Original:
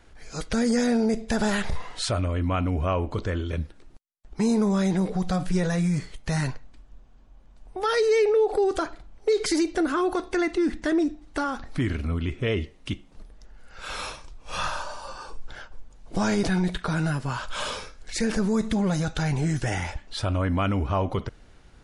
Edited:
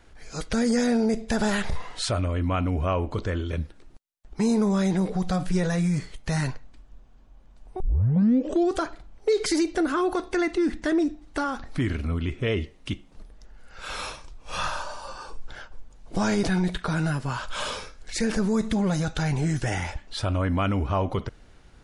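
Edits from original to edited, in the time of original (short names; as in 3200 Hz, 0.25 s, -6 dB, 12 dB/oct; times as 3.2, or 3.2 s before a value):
7.8 tape start 0.94 s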